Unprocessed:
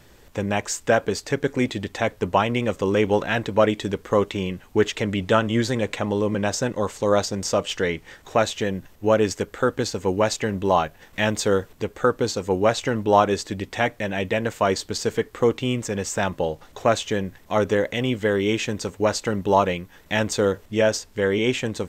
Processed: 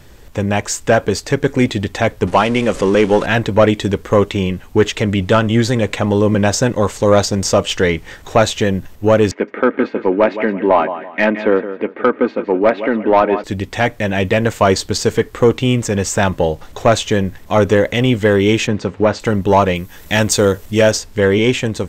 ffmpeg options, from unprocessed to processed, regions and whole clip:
-filter_complex "[0:a]asettb=1/sr,asplit=3[a][b][c];[a]atrim=end=2.274[d];[b]atrim=start=2.27:end=3.26,asetpts=PTS-STARTPTS,afade=t=in:d=0.004:c=qsin,afade=t=out:st=0.986:d=0.004:c=qsin,aeval=exprs='val(0)+0.5*0.0211*sgn(val(0))':c=same,lowpass=f=10k:w=0.5412,lowpass=f=10k:w=1.3066,equalizer=f=100:t=o:w=0.74:g=-12.5[e];[c]atrim=start=3.256[f];[d][e]acrossfade=d=0.004:c1=hsin:c2=qsin[g];[g][f]acrossfade=d=0.004:c1=qsin:c2=hsin,asettb=1/sr,asplit=3[h][i][j];[h]atrim=end=9.314[k];[i]atrim=start=9.31:end=13.44,asetpts=PTS-STARTPTS,afade=t=in:d=0.004:c=qsin,afade=t=out:st=4.126:d=0.004:c=qsin,highpass=f=210:w=0.5412,highpass=f=210:w=1.3066,equalizer=f=230:t=q:w=4:g=4,equalizer=f=470:t=q:w=4:g=3,equalizer=f=2.2k:t=q:w=4:g=5,lowpass=f=2.4k:w=0.5412,lowpass=f=2.4k:w=1.3066,aecho=1:1:3.2:0.33,atrim=end_sample=182133,aecho=1:1:167|334|501:0.224|0.0672|0.0201,atrim=end_sample=182133[l];[j]atrim=start=13.436[m];[k][l]acrossfade=d=0.004:c1=hsin:c2=qsin[n];[n][m]acrossfade=d=0.004:c1=qsin:c2=hsin,asettb=1/sr,asplit=3[o][p][q];[o]atrim=end=18.674[r];[p]atrim=start=18.67:end=19.2,asetpts=PTS-STARTPTS,afade=t=in:d=0.004:c=qsin,afade=t=out:st=0.526:d=0.004:c=qsin,acrusher=bits=7:mix=0:aa=0.5,highpass=120,lowpass=6.6k,bass=f=250:g=3,treble=f=4k:g=-13[s];[q]atrim=start=19.196[t];[r][s]acrossfade=d=0.004:c1=hsin:c2=qsin[u];[u][t]acrossfade=d=0.004:c1=qsin:c2=hsin,asettb=1/sr,asplit=3[v][w][x];[v]atrim=end=19.754[y];[w]atrim=start=19.75:end=20.92,asetpts=PTS-STARTPTS,afade=t=in:d=0.004:c=qsin,afade=t=out:st=1.166:d=0.004:c=qsin,aemphasis=mode=production:type=cd,acompressor=mode=upward:threshold=-41dB:ratio=2.5:attack=3.2:release=140:knee=2.83:detection=peak[z];[x]atrim=start=20.916[aa];[y][z]acrossfade=d=0.004:c1=hsin:c2=qsin[ab];[ab][aa]acrossfade=d=0.004:c1=qsin:c2=hsin,acontrast=76,lowshelf=f=110:g=7.5,dynaudnorm=f=140:g=9:m=11.5dB,volume=-1dB"

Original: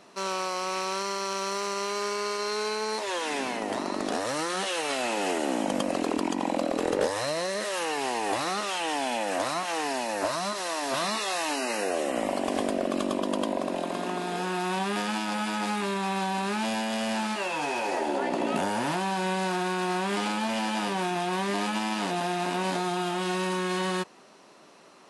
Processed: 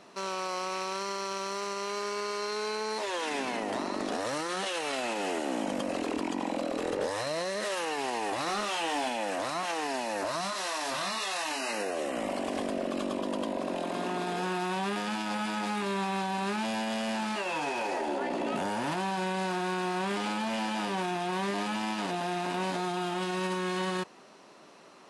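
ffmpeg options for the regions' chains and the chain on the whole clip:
-filter_complex "[0:a]asettb=1/sr,asplit=3[a][b][c];[a]atrim=end=8.464[d];[b]atrim=start=8.46:end=9.09,asetpts=PTS-STARTPTS,afade=t=in:d=0.004:c=qsin,afade=t=out:st=0.626:d=0.004:c=qsin,asplit=2[e][f];[f]adelay=24,volume=-6.5dB[g];[e][g]amix=inputs=2:normalize=0,atrim=end_sample=27783,volume=22dB,asoftclip=hard,volume=-22dB[h];[c]atrim=start=9.086[i];[d][h]acrossfade=d=0.004:c1=hsin:c2=qsin[j];[j][i]acrossfade=d=0.004:c1=qsin:c2=hsin,asettb=1/sr,asplit=3[k][l][m];[k]atrim=end=10.414[n];[l]atrim=start=10.41:end=11.73,asetpts=PTS-STARTPTS,afade=t=in:d=0.004:c=qsin,afade=t=out:st=1.316:d=0.004:c=qsin,equalizer=f=340:t=o:w=2.2:g=-6.5,asplit=2[o][p];[p]adelay=26,volume=-5.5dB[q];[o][q]amix=inputs=2:normalize=0,atrim=end_sample=58212[r];[m]atrim=start=11.726[s];[n][r]acrossfade=d=0.004:c1=hsin:c2=qsin[t];[t][s]acrossfade=d=0.004:c1=qsin:c2=hsin,highshelf=f=8.5k:g=-5.5,alimiter=limit=-24dB:level=0:latency=1:release=13"

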